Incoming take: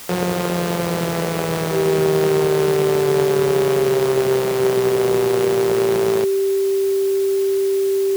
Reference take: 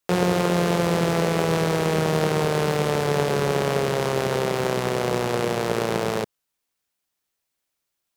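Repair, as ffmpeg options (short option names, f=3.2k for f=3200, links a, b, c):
-af "bandreject=f=390:w=30,afwtdn=0.016"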